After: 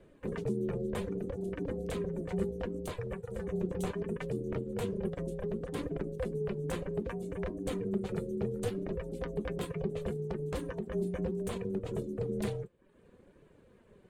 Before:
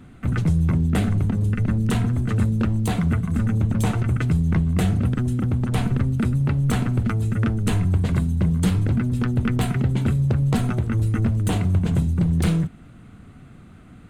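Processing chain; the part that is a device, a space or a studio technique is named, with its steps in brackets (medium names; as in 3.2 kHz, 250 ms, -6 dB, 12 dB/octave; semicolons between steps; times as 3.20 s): reverb removal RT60 0.7 s; 2.89–3.48 s: high-pass 110 Hz; alien voice (ring modulator 290 Hz; flange 0.67 Hz, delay 2.9 ms, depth 2.9 ms, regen +64%); trim -6 dB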